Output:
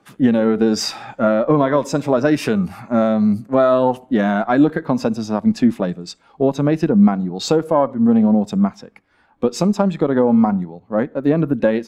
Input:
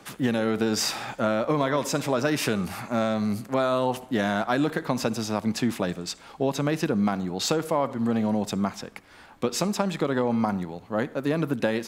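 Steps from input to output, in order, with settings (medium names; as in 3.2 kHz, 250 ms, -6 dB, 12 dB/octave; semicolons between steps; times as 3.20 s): Chebyshev shaper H 6 -25 dB, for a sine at -7.5 dBFS; spectral contrast expander 1.5:1; trim +6 dB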